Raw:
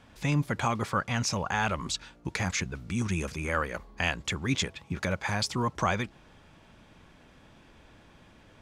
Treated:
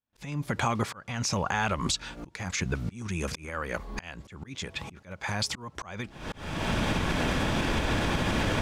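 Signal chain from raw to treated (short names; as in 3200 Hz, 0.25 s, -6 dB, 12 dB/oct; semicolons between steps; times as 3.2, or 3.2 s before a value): recorder AGC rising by 72 dB/s; gate -41 dBFS, range -41 dB; auto swell 0.426 s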